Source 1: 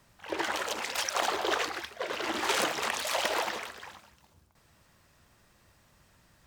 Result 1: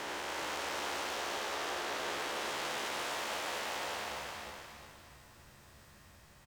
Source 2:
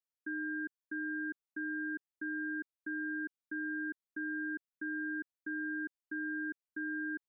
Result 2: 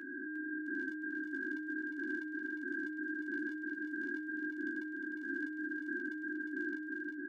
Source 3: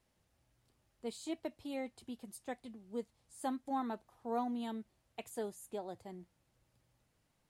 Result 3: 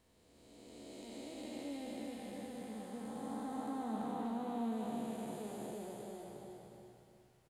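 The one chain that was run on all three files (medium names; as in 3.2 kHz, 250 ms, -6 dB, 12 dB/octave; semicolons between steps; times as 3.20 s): spectral blur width 1040 ms; compression 8:1, threshold -41 dBFS; hard clipper -38.5 dBFS; doubling 14 ms -7 dB; on a send: feedback delay 356 ms, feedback 29%, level -5 dB; on the sum: trim +5 dB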